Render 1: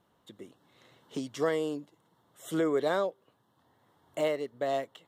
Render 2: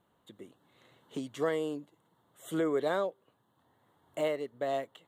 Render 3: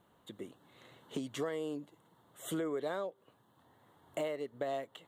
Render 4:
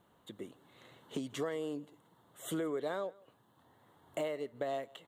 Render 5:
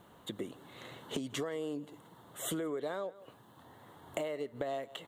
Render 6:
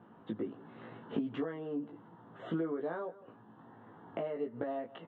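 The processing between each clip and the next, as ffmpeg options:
ffmpeg -i in.wav -af "equalizer=frequency=5300:width_type=o:width=0.31:gain=-12,volume=-2dB" out.wav
ffmpeg -i in.wav -af "acompressor=threshold=-39dB:ratio=4,volume=4dB" out.wav
ffmpeg -i in.wav -af "aecho=1:1:163:0.0631" out.wav
ffmpeg -i in.wav -af "acompressor=threshold=-45dB:ratio=4,volume=9.5dB" out.wav
ffmpeg -i in.wav -filter_complex "[0:a]highpass=110,equalizer=frequency=230:width_type=q:width=4:gain=6,equalizer=frequency=580:width_type=q:width=4:gain=-5,equalizer=frequency=1100:width_type=q:width=4:gain=-3,equalizer=frequency=2100:width_type=q:width=4:gain=-9,lowpass=frequency=2200:width=0.5412,lowpass=frequency=2200:width=1.3066,asplit=2[link_01][link_02];[link_02]adelay=18,volume=-2.5dB[link_03];[link_01][link_03]amix=inputs=2:normalize=0" out.wav

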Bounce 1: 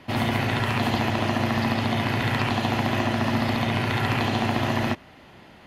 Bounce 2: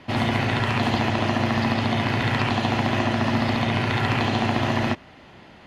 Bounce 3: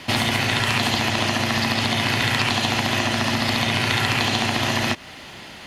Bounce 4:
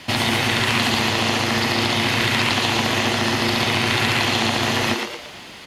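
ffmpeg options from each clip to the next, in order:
ffmpeg -i in.wav -af "lowpass=7900,volume=1.5dB" out.wav
ffmpeg -i in.wav -af "acompressor=threshold=-25dB:ratio=6,crystalizer=i=6:c=0,volume=4dB" out.wav
ffmpeg -i in.wav -filter_complex "[0:a]acrossover=split=2500[link_01][link_02];[link_01]aeval=exprs='sgn(val(0))*max(abs(val(0))-0.00224,0)':channel_layout=same[link_03];[link_03][link_02]amix=inputs=2:normalize=0,asplit=6[link_04][link_05][link_06][link_07][link_08][link_09];[link_05]adelay=115,afreqshift=120,volume=-4dB[link_10];[link_06]adelay=230,afreqshift=240,volume=-11.3dB[link_11];[link_07]adelay=345,afreqshift=360,volume=-18.7dB[link_12];[link_08]adelay=460,afreqshift=480,volume=-26dB[link_13];[link_09]adelay=575,afreqshift=600,volume=-33.3dB[link_14];[link_04][link_10][link_11][link_12][link_13][link_14]amix=inputs=6:normalize=0" out.wav

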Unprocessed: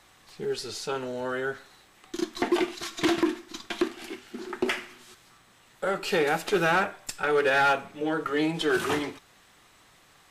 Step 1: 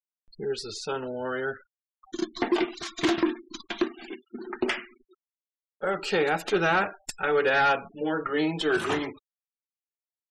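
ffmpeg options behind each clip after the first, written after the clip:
ffmpeg -i in.wav -af "afftfilt=real='re*gte(hypot(re,im),0.0112)':imag='im*gte(hypot(re,im),0.0112)':win_size=1024:overlap=0.75,acompressor=mode=upward:threshold=-45dB:ratio=2.5" out.wav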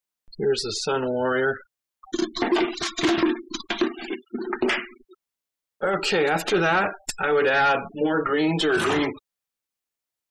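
ffmpeg -i in.wav -af "alimiter=limit=-23dB:level=0:latency=1:release=10,volume=8.5dB" out.wav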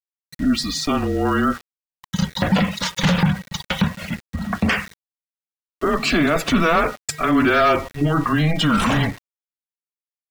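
ffmpeg -i in.wav -af "afreqshift=-160,aeval=exprs='val(0)+0.00501*sin(2*PI*1900*n/s)':channel_layout=same,aeval=exprs='val(0)*gte(abs(val(0)),0.0133)':channel_layout=same,volume=4dB" out.wav

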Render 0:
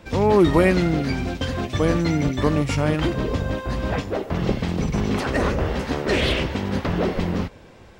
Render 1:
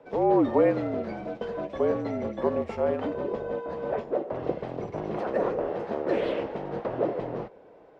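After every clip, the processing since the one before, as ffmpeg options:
ffmpeg -i in.wav -af "afreqshift=-52,bandpass=frequency=570:width_type=q:width=1.9:csg=0,volume=1.5dB" out.wav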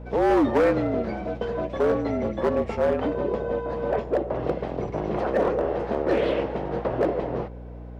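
ffmpeg -i in.wav -filter_complex "[0:a]acrossover=split=1500[link_01][link_02];[link_01]volume=20.5dB,asoftclip=hard,volume=-20.5dB[link_03];[link_03][link_02]amix=inputs=2:normalize=0,aeval=exprs='val(0)+0.00794*(sin(2*PI*60*n/s)+sin(2*PI*2*60*n/s)/2+sin(2*PI*3*60*n/s)/3+sin(2*PI*4*60*n/s)/4+sin(2*PI*5*60*n/s)/5)':channel_layout=same,volume=4.5dB" out.wav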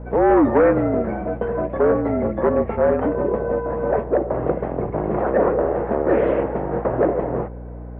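ffmpeg -i in.wav -af "lowpass=frequency=1900:width=0.5412,lowpass=frequency=1900:width=1.3066,volume=5dB" out.wav

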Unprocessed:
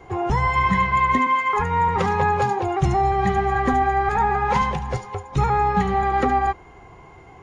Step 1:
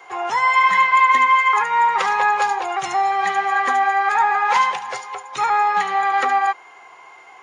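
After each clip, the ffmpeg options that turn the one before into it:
ffmpeg -i in.wav -af "highpass=1000,volume=7.5dB" out.wav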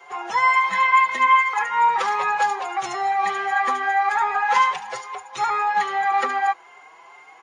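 ffmpeg -i in.wav -filter_complex "[0:a]asplit=2[link_01][link_02];[link_02]adelay=5.4,afreqshift=2.4[link_03];[link_01][link_03]amix=inputs=2:normalize=1" out.wav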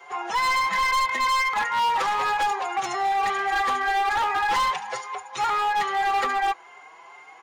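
ffmpeg -i in.wav -af "volume=20dB,asoftclip=hard,volume=-20dB" out.wav

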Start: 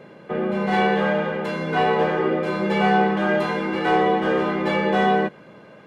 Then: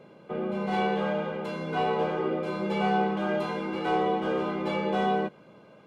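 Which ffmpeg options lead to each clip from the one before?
ffmpeg -i in.wav -af "equalizer=frequency=1800:width_type=o:width=0.22:gain=-14,volume=-7dB" out.wav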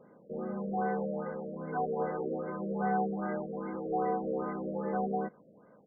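ffmpeg -i in.wav -af "aecho=1:1:4.1:0.31,afftfilt=real='re*lt(b*sr/1024,660*pow(2200/660,0.5+0.5*sin(2*PI*2.5*pts/sr)))':imag='im*lt(b*sr/1024,660*pow(2200/660,0.5+0.5*sin(2*PI*2.5*pts/sr)))':win_size=1024:overlap=0.75,volume=-6dB" out.wav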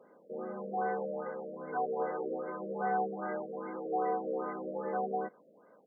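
ffmpeg -i in.wav -af "highpass=330" out.wav

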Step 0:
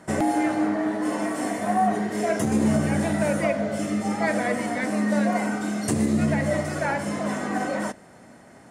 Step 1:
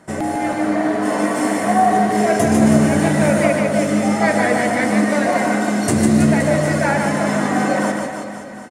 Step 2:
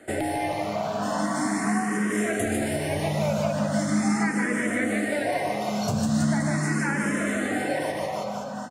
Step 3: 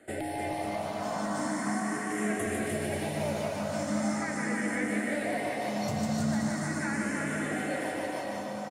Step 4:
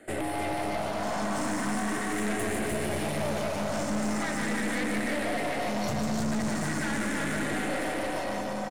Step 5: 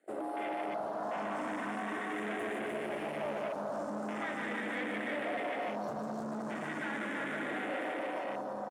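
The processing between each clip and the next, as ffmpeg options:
ffmpeg -i in.wav -filter_complex "[0:a]dynaudnorm=framelen=380:gausssize=3:maxgain=7dB,asplit=2[link_01][link_02];[link_02]aecho=0:1:150|322.5|520.9|749|1011:0.631|0.398|0.251|0.158|0.1[link_03];[link_01][link_03]amix=inputs=2:normalize=0" out.wav
ffmpeg -i in.wav -filter_complex "[0:a]equalizer=frequency=71:width=1.5:gain=-5.5,acrossover=split=170|1300[link_01][link_02][link_03];[link_01]acompressor=threshold=-29dB:ratio=4[link_04];[link_02]acompressor=threshold=-27dB:ratio=4[link_05];[link_03]acompressor=threshold=-32dB:ratio=4[link_06];[link_04][link_05][link_06]amix=inputs=3:normalize=0,asplit=2[link_07][link_08];[link_08]afreqshift=0.4[link_09];[link_07][link_09]amix=inputs=2:normalize=1,volume=2.5dB" out.wav
ffmpeg -i in.wav -af "aecho=1:1:300|540|732|885.6|1008:0.631|0.398|0.251|0.158|0.1,volume=-7.5dB" out.wav
ffmpeg -i in.wav -af "aeval=exprs='(tanh(50.1*val(0)+0.6)-tanh(0.6))/50.1':channel_layout=same,volume=7.5dB" out.wav
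ffmpeg -i in.wav -af "highpass=290,afwtdn=0.0158,volume=-4.5dB" out.wav

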